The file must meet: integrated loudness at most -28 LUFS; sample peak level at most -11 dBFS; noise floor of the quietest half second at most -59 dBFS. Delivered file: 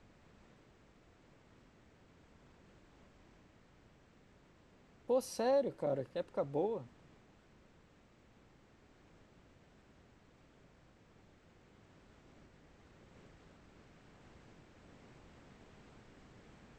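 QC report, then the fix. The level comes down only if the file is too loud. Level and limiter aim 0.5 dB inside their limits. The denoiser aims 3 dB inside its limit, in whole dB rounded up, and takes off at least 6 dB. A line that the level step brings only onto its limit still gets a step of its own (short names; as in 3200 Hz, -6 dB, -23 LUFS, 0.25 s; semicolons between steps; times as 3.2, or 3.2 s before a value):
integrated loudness -36.5 LUFS: OK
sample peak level -22.0 dBFS: OK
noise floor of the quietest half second -65 dBFS: OK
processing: none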